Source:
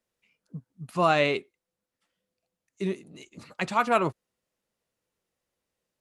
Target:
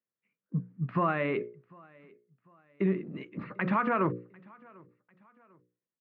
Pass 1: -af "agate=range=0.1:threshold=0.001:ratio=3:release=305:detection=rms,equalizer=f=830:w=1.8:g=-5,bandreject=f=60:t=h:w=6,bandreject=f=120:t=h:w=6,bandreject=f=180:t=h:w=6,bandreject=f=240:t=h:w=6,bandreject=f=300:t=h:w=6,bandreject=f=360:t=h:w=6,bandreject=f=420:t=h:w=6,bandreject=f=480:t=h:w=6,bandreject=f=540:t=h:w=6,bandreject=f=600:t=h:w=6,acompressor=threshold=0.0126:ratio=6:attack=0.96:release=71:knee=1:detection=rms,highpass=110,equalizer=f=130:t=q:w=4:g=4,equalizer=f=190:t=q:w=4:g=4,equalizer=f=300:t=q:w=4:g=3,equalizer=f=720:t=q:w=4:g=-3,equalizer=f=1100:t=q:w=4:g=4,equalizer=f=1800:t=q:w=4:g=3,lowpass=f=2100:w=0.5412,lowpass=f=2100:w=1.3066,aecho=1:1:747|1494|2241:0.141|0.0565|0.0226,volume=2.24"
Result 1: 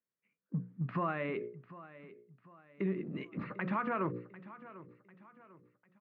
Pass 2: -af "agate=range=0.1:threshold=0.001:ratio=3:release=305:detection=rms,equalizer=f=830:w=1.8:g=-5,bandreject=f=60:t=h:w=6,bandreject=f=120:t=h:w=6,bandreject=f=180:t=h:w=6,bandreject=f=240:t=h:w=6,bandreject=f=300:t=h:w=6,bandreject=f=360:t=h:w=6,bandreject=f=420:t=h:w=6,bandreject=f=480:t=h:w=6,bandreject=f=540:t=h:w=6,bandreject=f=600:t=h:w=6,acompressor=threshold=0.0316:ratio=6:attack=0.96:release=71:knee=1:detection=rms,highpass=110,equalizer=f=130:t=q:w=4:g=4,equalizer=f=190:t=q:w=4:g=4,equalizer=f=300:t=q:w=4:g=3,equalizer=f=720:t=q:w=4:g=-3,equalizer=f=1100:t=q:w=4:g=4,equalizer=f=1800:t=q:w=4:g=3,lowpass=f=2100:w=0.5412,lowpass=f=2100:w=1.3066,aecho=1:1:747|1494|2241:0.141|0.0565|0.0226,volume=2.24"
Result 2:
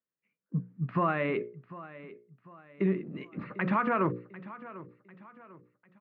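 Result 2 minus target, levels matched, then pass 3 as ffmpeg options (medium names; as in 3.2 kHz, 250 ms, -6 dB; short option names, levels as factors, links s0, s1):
echo-to-direct +9 dB
-af "agate=range=0.1:threshold=0.001:ratio=3:release=305:detection=rms,equalizer=f=830:w=1.8:g=-5,bandreject=f=60:t=h:w=6,bandreject=f=120:t=h:w=6,bandreject=f=180:t=h:w=6,bandreject=f=240:t=h:w=6,bandreject=f=300:t=h:w=6,bandreject=f=360:t=h:w=6,bandreject=f=420:t=h:w=6,bandreject=f=480:t=h:w=6,bandreject=f=540:t=h:w=6,bandreject=f=600:t=h:w=6,acompressor=threshold=0.0316:ratio=6:attack=0.96:release=71:knee=1:detection=rms,highpass=110,equalizer=f=130:t=q:w=4:g=4,equalizer=f=190:t=q:w=4:g=4,equalizer=f=300:t=q:w=4:g=3,equalizer=f=720:t=q:w=4:g=-3,equalizer=f=1100:t=q:w=4:g=4,equalizer=f=1800:t=q:w=4:g=3,lowpass=f=2100:w=0.5412,lowpass=f=2100:w=1.3066,aecho=1:1:747|1494:0.0501|0.02,volume=2.24"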